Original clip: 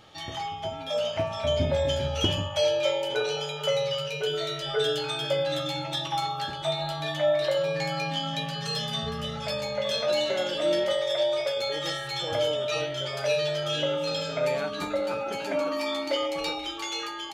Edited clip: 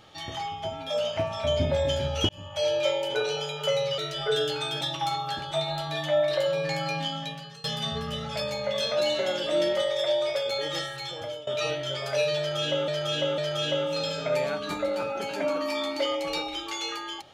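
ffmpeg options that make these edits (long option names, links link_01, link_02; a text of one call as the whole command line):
ffmpeg -i in.wav -filter_complex "[0:a]asplit=8[link_01][link_02][link_03][link_04][link_05][link_06][link_07][link_08];[link_01]atrim=end=2.29,asetpts=PTS-STARTPTS,afade=type=out:start_time=2.286:duration=0.004:curve=hsin[link_09];[link_02]atrim=start=2.29:end=3.982,asetpts=PTS-STARTPTS,afade=type=in:duration=0.47[link_10];[link_03]atrim=start=4.458:end=5.292[link_11];[link_04]atrim=start=5.918:end=8.75,asetpts=PTS-STARTPTS,afade=type=out:start_time=2.192:duration=0.64:silence=0.0841395[link_12];[link_05]atrim=start=8.75:end=12.58,asetpts=PTS-STARTPTS,afade=type=in:duration=0.004:curve=hsin:silence=0.0841395,afade=type=out:start_time=3.09:duration=0.74:silence=0.133352[link_13];[link_06]atrim=start=12.58:end=13.992,asetpts=PTS-STARTPTS,afade=type=in:duration=0.004:curve=hsin:silence=0.133352[link_14];[link_07]atrim=start=13.488:end=13.992[link_15];[link_08]atrim=start=13.488[link_16];[link_09][link_10]concat=n=2:v=0:a=1[link_17];[link_17][link_11]acrossfade=duration=0.004:curve1=hsin:curve2=hsin[link_18];[link_12][link_13][link_14]concat=n=3:v=0:a=1[link_19];[link_18][link_19]acrossfade=duration=0.004:curve1=hsin:curve2=hsin[link_20];[link_20][link_15]acrossfade=duration=0.004:curve1=hsin:curve2=hsin[link_21];[link_21][link_16]acrossfade=duration=0.004:curve1=hsin:curve2=hsin" out.wav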